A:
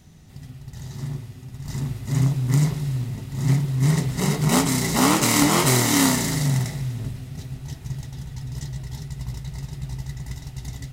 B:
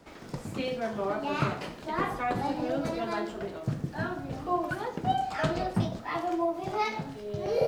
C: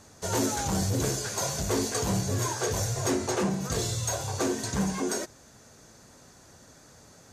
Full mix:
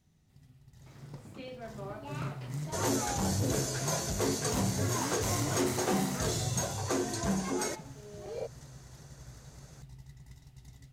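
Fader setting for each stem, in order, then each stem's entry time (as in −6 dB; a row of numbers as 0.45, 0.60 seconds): −19.0, −12.0, −3.5 decibels; 0.00, 0.80, 2.50 seconds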